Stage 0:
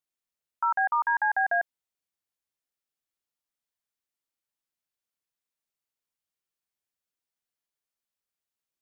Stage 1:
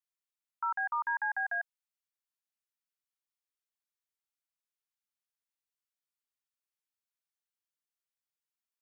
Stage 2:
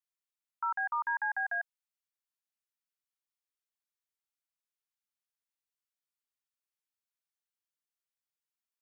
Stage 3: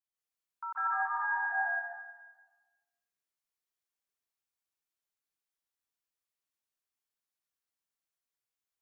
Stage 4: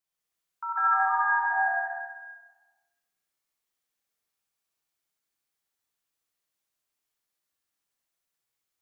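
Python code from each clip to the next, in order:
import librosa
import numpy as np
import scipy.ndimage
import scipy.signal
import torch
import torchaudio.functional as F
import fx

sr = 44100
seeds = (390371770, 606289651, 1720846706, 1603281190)

y1 = scipy.signal.sosfilt(scipy.signal.butter(4, 890.0, 'highpass', fs=sr, output='sos'), x)
y1 = F.gain(torch.from_numpy(y1), -6.0).numpy()
y2 = y1
y3 = fx.rev_plate(y2, sr, seeds[0], rt60_s=1.3, hf_ratio=0.8, predelay_ms=120, drr_db=-7.5)
y3 = F.gain(torch.from_numpy(y3), -7.0).numpy()
y4 = fx.echo_feedback(y3, sr, ms=65, feedback_pct=56, wet_db=-4.0)
y4 = F.gain(torch.from_numpy(y4), 5.0).numpy()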